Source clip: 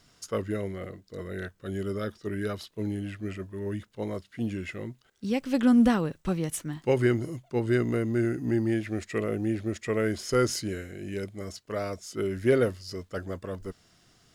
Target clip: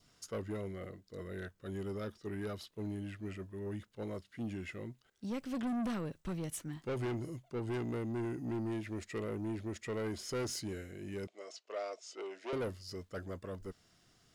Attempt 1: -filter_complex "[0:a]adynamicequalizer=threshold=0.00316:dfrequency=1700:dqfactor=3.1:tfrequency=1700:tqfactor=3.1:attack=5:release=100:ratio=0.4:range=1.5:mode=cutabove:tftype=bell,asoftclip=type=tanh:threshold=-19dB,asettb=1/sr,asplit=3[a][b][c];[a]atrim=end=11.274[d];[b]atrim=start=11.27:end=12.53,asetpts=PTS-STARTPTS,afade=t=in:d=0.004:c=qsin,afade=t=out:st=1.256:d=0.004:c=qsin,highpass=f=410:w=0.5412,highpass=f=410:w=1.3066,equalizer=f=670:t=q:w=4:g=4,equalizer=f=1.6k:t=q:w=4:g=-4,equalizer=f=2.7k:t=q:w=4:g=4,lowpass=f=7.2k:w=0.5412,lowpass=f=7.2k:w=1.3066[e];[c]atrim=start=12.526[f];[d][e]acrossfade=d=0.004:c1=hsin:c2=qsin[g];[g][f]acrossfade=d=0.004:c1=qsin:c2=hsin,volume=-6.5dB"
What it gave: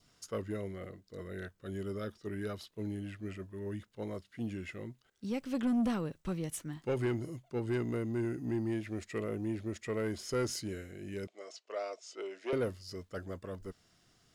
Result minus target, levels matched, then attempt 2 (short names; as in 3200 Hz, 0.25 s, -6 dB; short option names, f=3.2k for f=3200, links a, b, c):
soft clip: distortion -7 dB
-filter_complex "[0:a]adynamicequalizer=threshold=0.00316:dfrequency=1700:dqfactor=3.1:tfrequency=1700:tqfactor=3.1:attack=5:release=100:ratio=0.4:range=1.5:mode=cutabove:tftype=bell,asoftclip=type=tanh:threshold=-26.5dB,asettb=1/sr,asplit=3[a][b][c];[a]atrim=end=11.274[d];[b]atrim=start=11.27:end=12.53,asetpts=PTS-STARTPTS,afade=t=in:d=0.004:c=qsin,afade=t=out:st=1.256:d=0.004:c=qsin,highpass=f=410:w=0.5412,highpass=f=410:w=1.3066,equalizer=f=670:t=q:w=4:g=4,equalizer=f=1.6k:t=q:w=4:g=-4,equalizer=f=2.7k:t=q:w=4:g=4,lowpass=f=7.2k:w=0.5412,lowpass=f=7.2k:w=1.3066[e];[c]atrim=start=12.526[f];[d][e]acrossfade=d=0.004:c1=hsin:c2=qsin[g];[g][f]acrossfade=d=0.004:c1=qsin:c2=hsin,volume=-6.5dB"